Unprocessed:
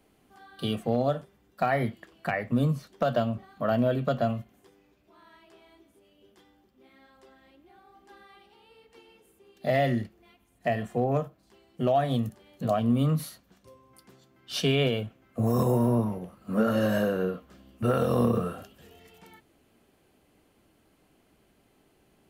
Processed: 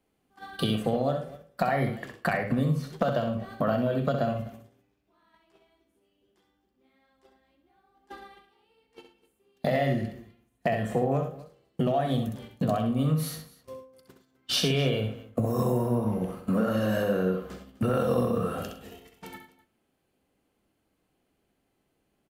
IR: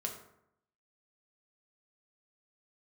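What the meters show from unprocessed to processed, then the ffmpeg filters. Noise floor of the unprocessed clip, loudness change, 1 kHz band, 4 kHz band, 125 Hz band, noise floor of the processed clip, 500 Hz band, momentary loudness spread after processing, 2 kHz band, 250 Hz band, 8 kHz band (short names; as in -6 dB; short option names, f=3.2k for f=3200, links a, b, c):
-66 dBFS, -0.5 dB, -0.5 dB, +3.0 dB, 0.0 dB, -75 dBFS, -0.5 dB, 18 LU, 0.0 dB, -0.5 dB, +4.0 dB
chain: -filter_complex "[0:a]agate=range=-22dB:threshold=-51dB:ratio=16:detection=peak,acompressor=threshold=-36dB:ratio=6,aecho=1:1:65|108|253:0.447|0.168|0.106,asplit=2[a][b];[1:a]atrim=start_sample=2205,asetrate=52920,aresample=44100[c];[b][c]afir=irnorm=-1:irlink=0,volume=-7.5dB[d];[a][d]amix=inputs=2:normalize=0,volume=9dB"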